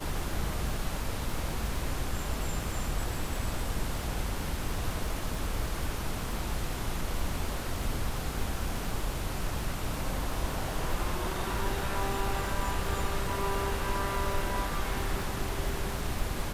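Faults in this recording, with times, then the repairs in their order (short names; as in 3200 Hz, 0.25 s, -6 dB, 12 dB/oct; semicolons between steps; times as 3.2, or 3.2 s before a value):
crackle 58/s -35 dBFS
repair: de-click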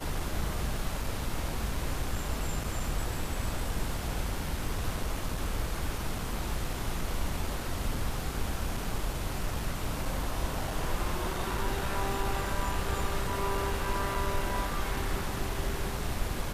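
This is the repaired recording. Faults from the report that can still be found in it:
none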